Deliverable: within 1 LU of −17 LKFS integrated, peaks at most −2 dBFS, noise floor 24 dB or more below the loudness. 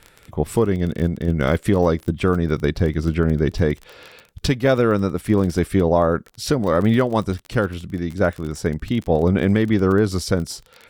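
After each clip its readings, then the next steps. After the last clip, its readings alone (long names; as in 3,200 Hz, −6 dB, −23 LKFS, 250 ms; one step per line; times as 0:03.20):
crackle rate 27 per second; integrated loudness −20.5 LKFS; sample peak −4.0 dBFS; target loudness −17.0 LKFS
→ click removal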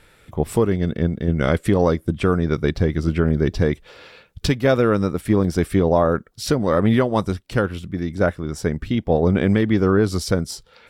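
crackle rate 0.092 per second; integrated loudness −20.5 LKFS; sample peak −4.0 dBFS; target loudness −17.0 LKFS
→ level +3.5 dB
brickwall limiter −2 dBFS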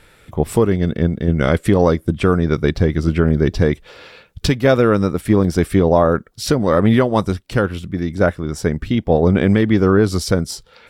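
integrated loudness −17.0 LKFS; sample peak −2.0 dBFS; background noise floor −51 dBFS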